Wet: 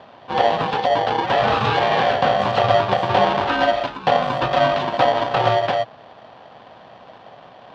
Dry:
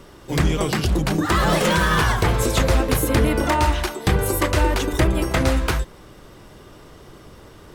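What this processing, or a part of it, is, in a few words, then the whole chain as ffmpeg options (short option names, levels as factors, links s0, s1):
ring modulator pedal into a guitar cabinet: -af "aeval=exprs='val(0)*sgn(sin(2*PI*640*n/s))':c=same,highpass=99,equalizer=f=120:t=q:w=4:g=6,equalizer=f=310:t=q:w=4:g=-7,equalizer=f=760:t=q:w=4:g=5,equalizer=f=2100:t=q:w=4:g=-9,lowpass=f=3600:w=0.5412,lowpass=f=3600:w=1.3066"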